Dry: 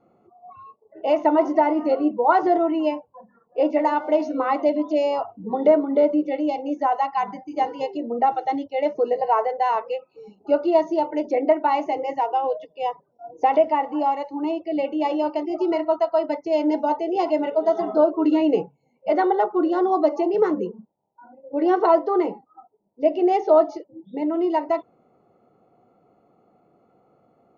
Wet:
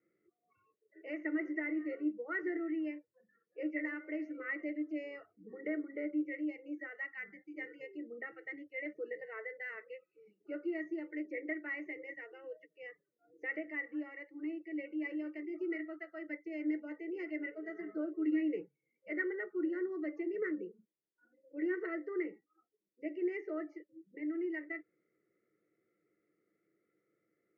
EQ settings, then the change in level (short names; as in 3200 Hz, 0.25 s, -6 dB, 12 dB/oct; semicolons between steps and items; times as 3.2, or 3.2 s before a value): double band-pass 760 Hz, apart 2.7 oct; fixed phaser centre 990 Hz, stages 6; +1.5 dB